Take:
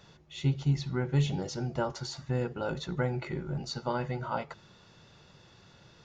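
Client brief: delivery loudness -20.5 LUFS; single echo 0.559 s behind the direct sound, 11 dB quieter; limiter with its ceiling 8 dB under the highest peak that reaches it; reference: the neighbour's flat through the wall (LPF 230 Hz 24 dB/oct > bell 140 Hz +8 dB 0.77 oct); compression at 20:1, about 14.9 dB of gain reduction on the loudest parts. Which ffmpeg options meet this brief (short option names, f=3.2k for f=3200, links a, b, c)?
-af "acompressor=threshold=-36dB:ratio=20,alimiter=level_in=10dB:limit=-24dB:level=0:latency=1,volume=-10dB,lowpass=f=230:w=0.5412,lowpass=f=230:w=1.3066,equalizer=f=140:t=o:w=0.77:g=8,aecho=1:1:559:0.282,volume=19dB"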